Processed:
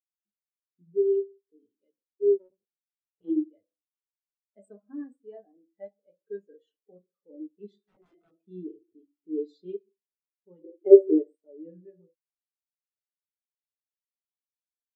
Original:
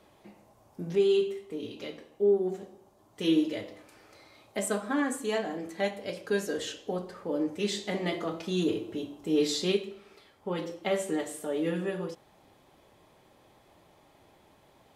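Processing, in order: 2.38–3.3 cycle switcher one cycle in 2, muted; 7.81–8.33 wrapped overs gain 26.5 dB; 10.64–11.35 bell 390 Hz +15 dB 0.79 oct; spectral expander 2.5:1; gain +7 dB

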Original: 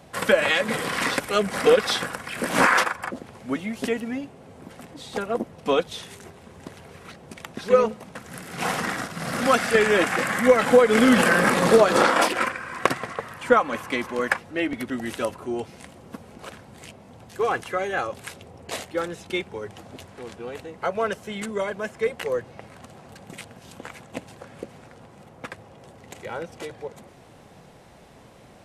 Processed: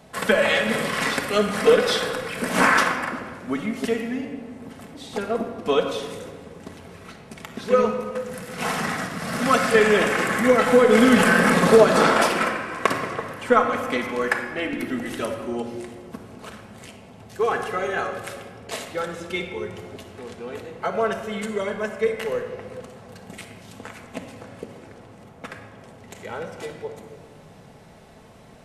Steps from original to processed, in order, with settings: shoebox room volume 2100 m³, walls mixed, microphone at 1.5 m; gain -1 dB

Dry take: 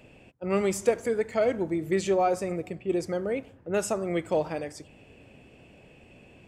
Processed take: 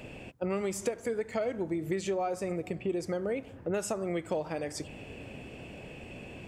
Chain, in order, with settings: compressor 6:1, threshold -38 dBFS, peak gain reduction 19.5 dB; gain +8 dB

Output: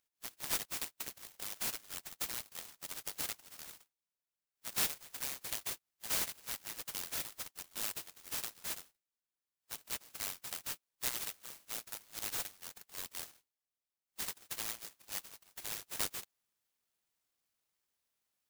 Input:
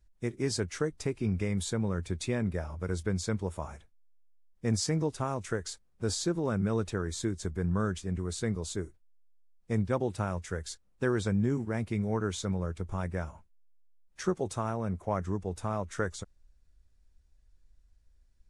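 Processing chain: steep high-pass 1200 Hz 36 dB/oct; noise-modulated delay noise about 5000 Hz, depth 0.4 ms; gain +2 dB

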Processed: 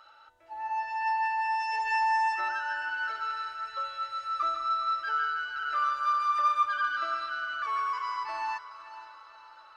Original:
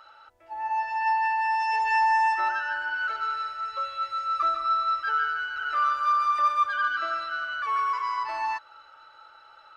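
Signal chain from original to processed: bell 6000 Hz +3 dB 1.8 oct; resonator 300 Hz, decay 0.83 s, mix 70%; diffused feedback echo 0.484 s, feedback 47%, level -14 dB; gain +5.5 dB

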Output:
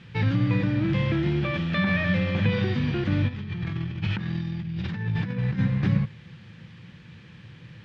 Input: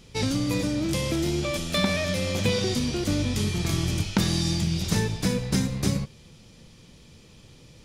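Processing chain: added noise violet -37 dBFS; limiter -17 dBFS, peak gain reduction 10.5 dB; low shelf 320 Hz +4 dB; 3.28–5.59 negative-ratio compressor -29 dBFS, ratio -0.5; speaker cabinet 110–3000 Hz, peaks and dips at 110 Hz +8 dB, 170 Hz +5 dB, 260 Hz -6 dB, 420 Hz -7 dB, 630 Hz -7 dB, 1700 Hz +8 dB; gain +1.5 dB

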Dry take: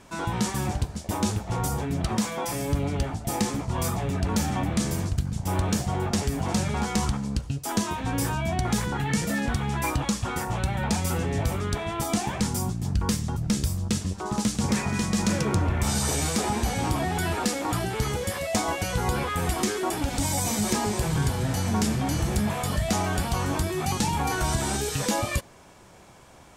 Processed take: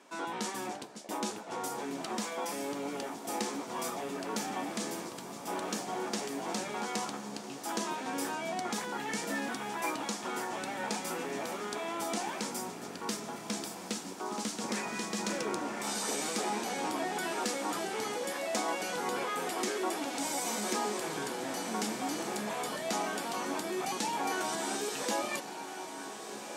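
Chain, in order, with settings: HPF 260 Hz 24 dB/oct; high shelf 10000 Hz -6 dB; diffused feedback echo 1.481 s, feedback 46%, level -9 dB; gain -5.5 dB

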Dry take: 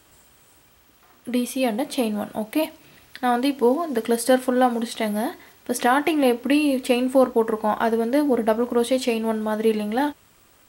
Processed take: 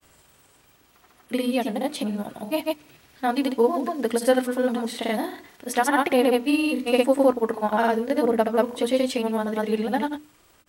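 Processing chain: grains, pitch spread up and down by 0 st; notches 60/120/180/240/300 Hz

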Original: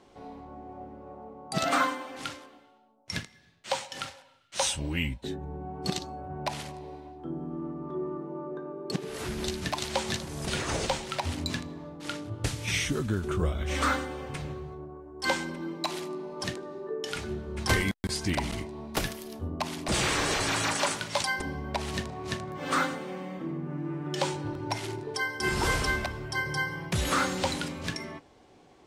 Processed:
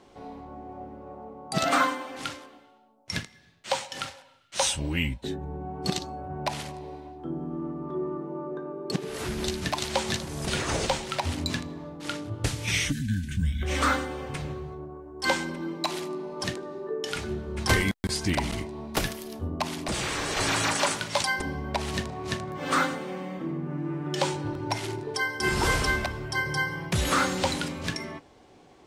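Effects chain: 12.92–13.62 spectral gain 280–1500 Hz -30 dB; 19.71–20.37 compressor 4:1, threshold -30 dBFS, peak gain reduction 6 dB; gain +2.5 dB

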